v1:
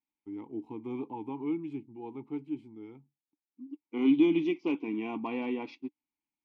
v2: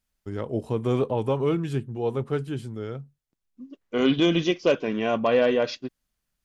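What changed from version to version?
second voice −4.5 dB
master: remove formant filter u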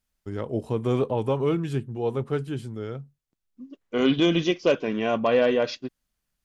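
nothing changed

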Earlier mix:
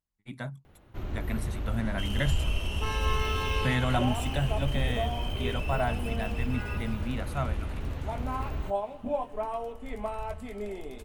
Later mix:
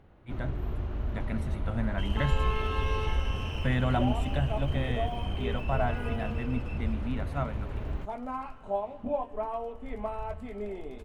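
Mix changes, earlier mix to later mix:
first sound: entry −0.65 s
master: add low-pass filter 2,000 Hz 6 dB per octave

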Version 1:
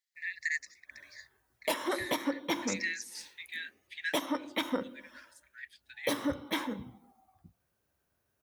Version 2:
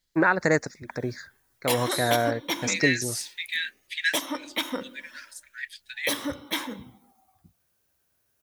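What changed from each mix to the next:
first voice: remove linear-phase brick-wall high-pass 1,700 Hz
second voice +6.5 dB
master: add high-shelf EQ 2,300 Hz +10 dB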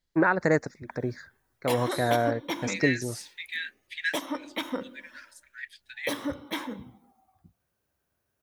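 master: add high-shelf EQ 2,300 Hz −10 dB

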